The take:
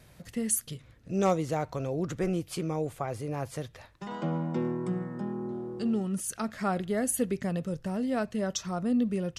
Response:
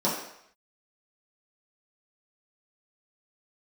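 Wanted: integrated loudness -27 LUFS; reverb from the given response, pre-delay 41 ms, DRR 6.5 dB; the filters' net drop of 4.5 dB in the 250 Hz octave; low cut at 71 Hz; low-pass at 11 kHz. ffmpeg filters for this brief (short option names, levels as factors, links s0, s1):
-filter_complex "[0:a]highpass=71,lowpass=11000,equalizer=f=250:t=o:g=-6,asplit=2[s0][s1];[1:a]atrim=start_sample=2205,adelay=41[s2];[s1][s2]afir=irnorm=-1:irlink=0,volume=0.112[s3];[s0][s3]amix=inputs=2:normalize=0,volume=1.68"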